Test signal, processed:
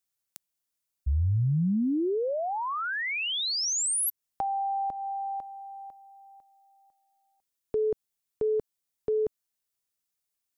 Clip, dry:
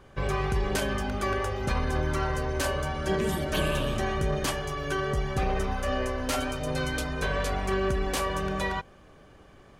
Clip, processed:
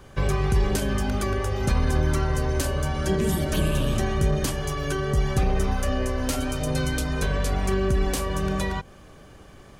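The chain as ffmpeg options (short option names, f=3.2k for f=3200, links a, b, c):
-filter_complex "[0:a]bass=f=250:g=3,treble=f=4k:g=4,acrossover=split=410[a][b];[b]acompressor=threshold=-34dB:ratio=6[c];[a][c]amix=inputs=2:normalize=0,highshelf=f=5.6k:g=4.5,volume=4dB"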